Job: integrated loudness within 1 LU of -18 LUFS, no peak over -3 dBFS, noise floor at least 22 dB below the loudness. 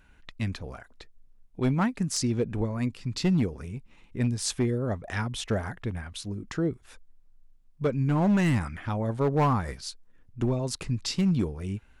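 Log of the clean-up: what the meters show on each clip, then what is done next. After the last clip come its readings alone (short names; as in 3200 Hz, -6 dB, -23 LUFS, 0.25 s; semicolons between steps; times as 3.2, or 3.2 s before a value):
clipped 1.0%; flat tops at -18.5 dBFS; loudness -28.5 LUFS; peak -18.5 dBFS; loudness target -18.0 LUFS
-> clip repair -18.5 dBFS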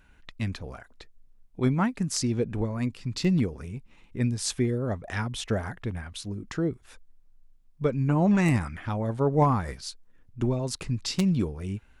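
clipped 0.0%; loudness -28.0 LUFS; peak -9.5 dBFS; loudness target -18.0 LUFS
-> gain +10 dB; limiter -3 dBFS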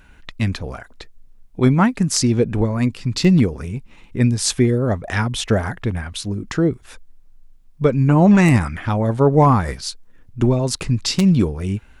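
loudness -18.0 LUFS; peak -3.0 dBFS; noise floor -48 dBFS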